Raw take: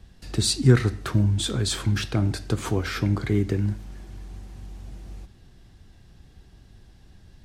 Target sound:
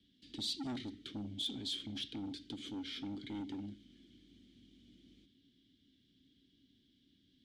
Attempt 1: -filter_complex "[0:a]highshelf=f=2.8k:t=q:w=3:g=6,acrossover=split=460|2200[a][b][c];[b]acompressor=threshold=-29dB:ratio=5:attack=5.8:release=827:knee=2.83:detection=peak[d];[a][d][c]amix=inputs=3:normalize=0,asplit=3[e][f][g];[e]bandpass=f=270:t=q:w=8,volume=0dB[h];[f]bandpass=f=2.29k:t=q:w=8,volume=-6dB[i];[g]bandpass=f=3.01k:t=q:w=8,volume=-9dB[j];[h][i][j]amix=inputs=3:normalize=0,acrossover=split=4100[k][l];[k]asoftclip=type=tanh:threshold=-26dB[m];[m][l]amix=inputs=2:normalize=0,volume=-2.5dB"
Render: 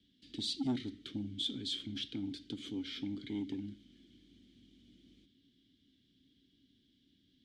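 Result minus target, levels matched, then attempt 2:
soft clip: distortion -7 dB
-filter_complex "[0:a]highshelf=f=2.8k:t=q:w=3:g=6,acrossover=split=460|2200[a][b][c];[b]acompressor=threshold=-29dB:ratio=5:attack=5.8:release=827:knee=2.83:detection=peak[d];[a][d][c]amix=inputs=3:normalize=0,asplit=3[e][f][g];[e]bandpass=f=270:t=q:w=8,volume=0dB[h];[f]bandpass=f=2.29k:t=q:w=8,volume=-6dB[i];[g]bandpass=f=3.01k:t=q:w=8,volume=-9dB[j];[h][i][j]amix=inputs=3:normalize=0,acrossover=split=4100[k][l];[k]asoftclip=type=tanh:threshold=-35.5dB[m];[m][l]amix=inputs=2:normalize=0,volume=-2.5dB"

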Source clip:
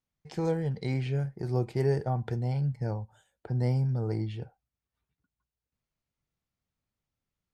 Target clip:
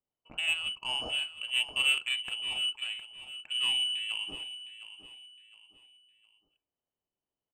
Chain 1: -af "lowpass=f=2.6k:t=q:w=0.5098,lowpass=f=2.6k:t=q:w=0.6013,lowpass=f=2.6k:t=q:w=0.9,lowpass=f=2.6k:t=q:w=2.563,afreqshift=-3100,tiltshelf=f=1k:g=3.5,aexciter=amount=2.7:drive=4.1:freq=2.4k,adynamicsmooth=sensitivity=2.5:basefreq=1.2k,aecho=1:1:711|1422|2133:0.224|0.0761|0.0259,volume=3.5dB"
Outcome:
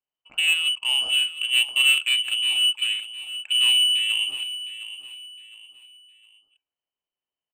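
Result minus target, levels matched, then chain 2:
1000 Hz band -9.5 dB
-af "lowpass=f=2.6k:t=q:w=0.5098,lowpass=f=2.6k:t=q:w=0.6013,lowpass=f=2.6k:t=q:w=0.9,lowpass=f=2.6k:t=q:w=2.563,afreqshift=-3100,tiltshelf=f=1k:g=13.5,aexciter=amount=2.7:drive=4.1:freq=2.4k,adynamicsmooth=sensitivity=2.5:basefreq=1.2k,aecho=1:1:711|1422|2133:0.224|0.0761|0.0259,volume=3.5dB"

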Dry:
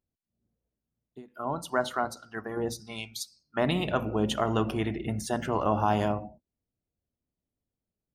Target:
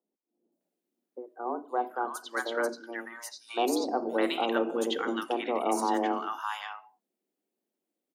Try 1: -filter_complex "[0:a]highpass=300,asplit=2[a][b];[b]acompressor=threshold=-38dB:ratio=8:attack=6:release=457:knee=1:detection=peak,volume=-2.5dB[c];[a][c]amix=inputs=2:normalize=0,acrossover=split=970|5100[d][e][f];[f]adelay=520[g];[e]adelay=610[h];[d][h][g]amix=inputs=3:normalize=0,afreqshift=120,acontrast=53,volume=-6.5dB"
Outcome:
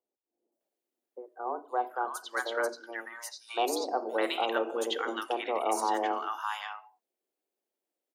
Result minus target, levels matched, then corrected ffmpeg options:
125 Hz band -11.0 dB
-filter_complex "[0:a]highpass=130,asplit=2[a][b];[b]acompressor=threshold=-38dB:ratio=8:attack=6:release=457:knee=1:detection=peak,volume=-2.5dB[c];[a][c]amix=inputs=2:normalize=0,acrossover=split=970|5100[d][e][f];[f]adelay=520[g];[e]adelay=610[h];[d][h][g]amix=inputs=3:normalize=0,afreqshift=120,acontrast=53,volume=-6.5dB"

